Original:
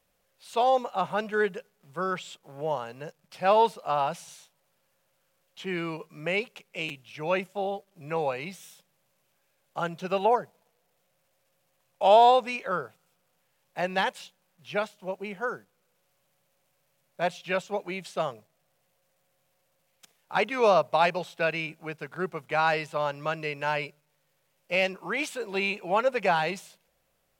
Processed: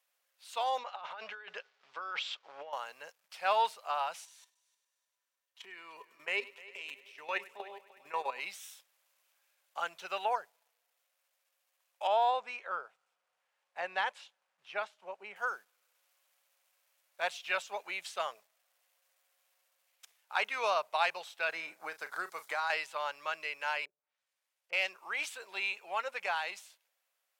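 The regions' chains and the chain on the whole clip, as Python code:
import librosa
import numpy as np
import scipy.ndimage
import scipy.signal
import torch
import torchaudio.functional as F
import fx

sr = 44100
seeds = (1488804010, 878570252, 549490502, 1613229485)

y = fx.chain(x, sr, fx.lowpass(hz=5000.0, slope=24),
    fx.over_compress(threshold_db=-35.0, ratio=-1.0),
    fx.low_shelf(hz=140.0, db=-11.0), at=(0.78, 2.73))
y = fx.chain(y, sr, fx.level_steps(step_db=14),
    fx.small_body(hz=(250.0, 400.0, 990.0, 1800.0), ring_ms=100, db=12),
    fx.echo_heads(ms=101, heads='first and third', feedback_pct=55, wet_db=-20.0), at=(4.25, 8.4))
y = fx.chain(y, sr, fx.lowpass(hz=9400.0, slope=12),
    fx.high_shelf(hz=2400.0, db=-12.0), at=(12.07, 15.36))
y = fx.chain(y, sr, fx.peak_eq(hz=2700.0, db=-12.0, octaves=0.52),
    fx.doubler(ms=36.0, db=-12.5),
    fx.band_squash(depth_pct=100), at=(21.49, 22.7))
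y = fx.chain(y, sr, fx.law_mismatch(coded='A'),
    fx.env_lowpass_down(base_hz=400.0, full_db=-50.5), at=(23.85, 24.73))
y = scipy.signal.sosfilt(scipy.signal.butter(2, 1000.0, 'highpass', fs=sr, output='sos'), y)
y = fx.rider(y, sr, range_db=3, speed_s=2.0)
y = y * librosa.db_to_amplitude(-3.0)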